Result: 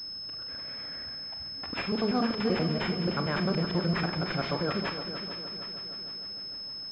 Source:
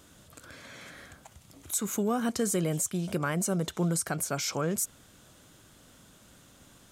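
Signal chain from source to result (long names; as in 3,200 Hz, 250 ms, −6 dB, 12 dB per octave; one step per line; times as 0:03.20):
reversed piece by piece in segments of 96 ms
on a send: echo machine with several playback heads 153 ms, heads second and third, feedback 57%, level −11.5 dB
on the sum: four-comb reverb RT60 0.37 s, combs from 28 ms, DRR 7.5 dB
switching amplifier with a slow clock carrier 5,200 Hz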